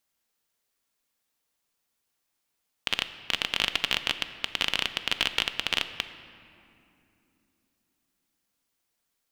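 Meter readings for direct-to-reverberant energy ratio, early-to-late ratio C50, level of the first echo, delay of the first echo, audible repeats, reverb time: 9.5 dB, 11.5 dB, no echo audible, no echo audible, no echo audible, 2.8 s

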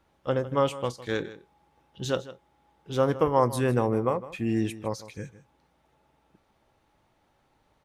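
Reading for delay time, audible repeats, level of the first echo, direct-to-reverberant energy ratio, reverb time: 157 ms, 1, −16.0 dB, no reverb audible, no reverb audible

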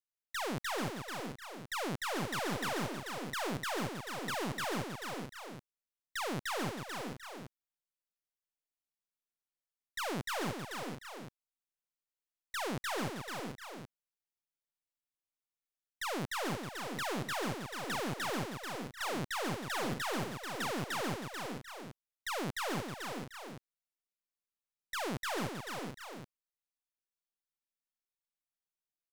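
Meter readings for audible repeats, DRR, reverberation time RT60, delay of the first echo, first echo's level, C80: 4, no reverb audible, no reverb audible, 318 ms, −11.5 dB, no reverb audible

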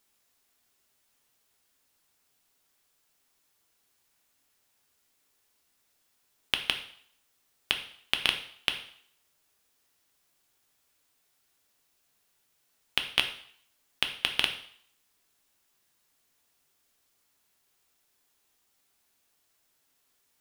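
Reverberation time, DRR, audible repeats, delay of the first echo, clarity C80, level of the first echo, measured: 0.60 s, 5.0 dB, no echo audible, no echo audible, 13.5 dB, no echo audible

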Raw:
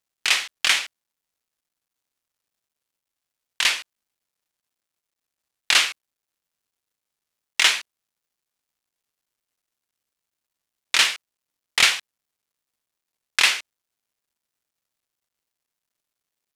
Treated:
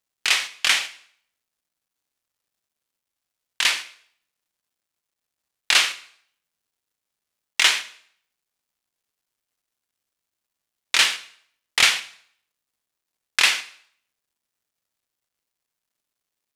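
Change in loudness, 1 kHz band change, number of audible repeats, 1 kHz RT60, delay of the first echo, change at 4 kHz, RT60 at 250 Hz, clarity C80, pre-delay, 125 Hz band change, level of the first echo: +0.5 dB, +0.5 dB, no echo audible, 0.60 s, no echo audible, +0.5 dB, 0.55 s, 18.5 dB, 7 ms, can't be measured, no echo audible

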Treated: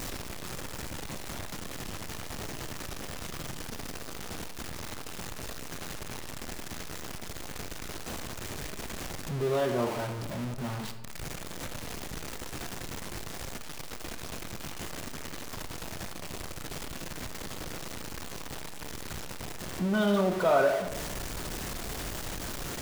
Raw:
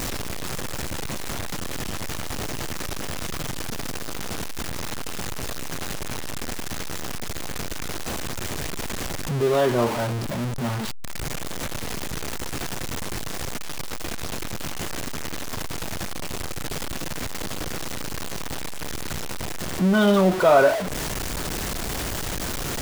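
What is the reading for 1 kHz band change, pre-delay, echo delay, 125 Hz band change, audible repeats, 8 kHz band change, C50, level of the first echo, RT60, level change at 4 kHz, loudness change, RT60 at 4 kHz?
−8.0 dB, 25 ms, no echo audible, −8.0 dB, no echo audible, −8.0 dB, 9.5 dB, no echo audible, 1.1 s, −8.0 dB, −8.0 dB, 0.65 s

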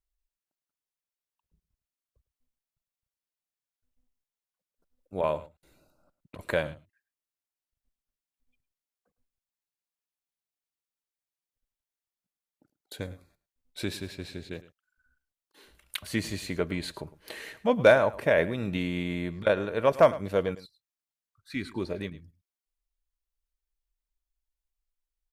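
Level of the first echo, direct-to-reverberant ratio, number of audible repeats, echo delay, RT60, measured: −17.5 dB, no reverb audible, 1, 107 ms, no reverb audible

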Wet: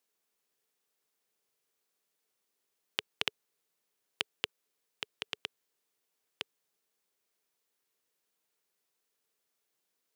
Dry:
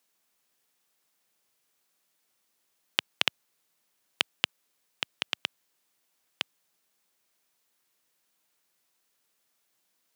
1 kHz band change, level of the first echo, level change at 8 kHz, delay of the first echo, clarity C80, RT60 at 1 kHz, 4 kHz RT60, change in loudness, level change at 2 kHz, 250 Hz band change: −7.5 dB, no echo audible, −7.5 dB, no echo audible, no reverb audible, no reverb audible, no reverb audible, −7.5 dB, −7.5 dB, −6.5 dB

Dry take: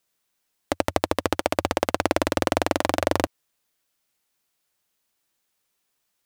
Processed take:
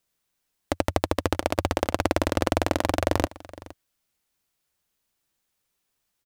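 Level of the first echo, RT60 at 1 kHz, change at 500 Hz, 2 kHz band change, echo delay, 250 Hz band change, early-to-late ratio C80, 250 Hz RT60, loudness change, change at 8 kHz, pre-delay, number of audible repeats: −19.5 dB, no reverb audible, −1.5 dB, −2.5 dB, 465 ms, −0.5 dB, no reverb audible, no reverb audible, −1.5 dB, −2.5 dB, no reverb audible, 1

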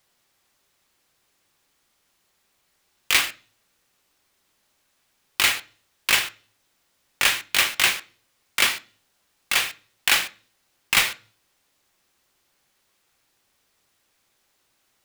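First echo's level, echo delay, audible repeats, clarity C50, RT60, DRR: no echo audible, no echo audible, no echo audible, 20.0 dB, 0.40 s, 10.0 dB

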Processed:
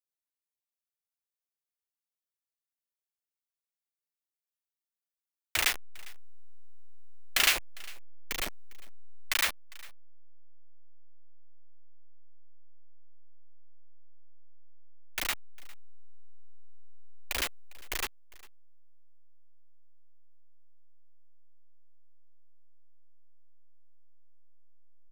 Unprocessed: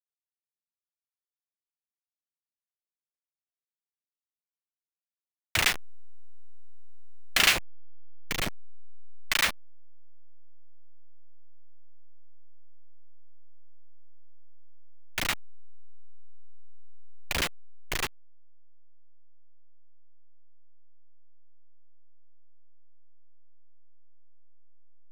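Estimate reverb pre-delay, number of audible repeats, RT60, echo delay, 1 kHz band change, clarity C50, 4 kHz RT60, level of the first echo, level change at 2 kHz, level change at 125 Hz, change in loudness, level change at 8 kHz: no reverb audible, 1, no reverb audible, 403 ms, −4.0 dB, no reverb audible, no reverb audible, −22.5 dB, −3.5 dB, −9.5 dB, −2.5 dB, −1.0 dB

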